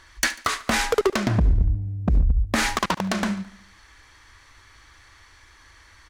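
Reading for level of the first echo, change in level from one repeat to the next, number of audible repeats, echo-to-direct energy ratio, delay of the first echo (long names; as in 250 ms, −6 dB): −19.5 dB, −5.0 dB, 4, −18.0 dB, 72 ms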